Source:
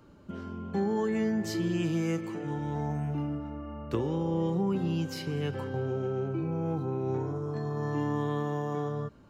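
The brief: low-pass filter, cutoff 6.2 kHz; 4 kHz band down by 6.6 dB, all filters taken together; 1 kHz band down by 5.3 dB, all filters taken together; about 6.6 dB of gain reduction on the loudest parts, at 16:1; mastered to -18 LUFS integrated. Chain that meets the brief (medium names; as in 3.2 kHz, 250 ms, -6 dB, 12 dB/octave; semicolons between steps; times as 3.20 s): low-pass 6.2 kHz; peaking EQ 1 kHz -6.5 dB; peaking EQ 4 kHz -8.5 dB; compression 16:1, threshold -31 dBFS; trim +18.5 dB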